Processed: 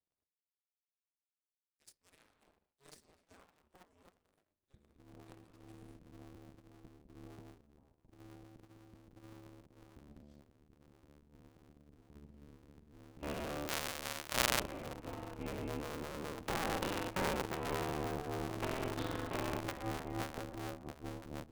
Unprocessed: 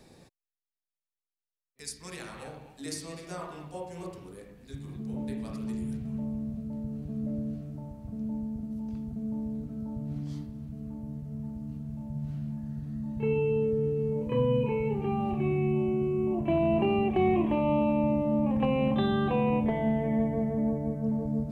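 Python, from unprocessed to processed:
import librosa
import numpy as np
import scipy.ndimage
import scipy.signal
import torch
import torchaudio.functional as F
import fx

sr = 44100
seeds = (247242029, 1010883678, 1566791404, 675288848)

y = fx.cycle_switch(x, sr, every=2, mode='inverted')
y = fx.tilt_shelf(y, sr, db=-6.0, hz=740.0, at=(13.67, 14.59), fade=0.02)
y = fx.power_curve(y, sr, exponent=2.0)
y = F.gain(torch.from_numpy(y), 1.0).numpy()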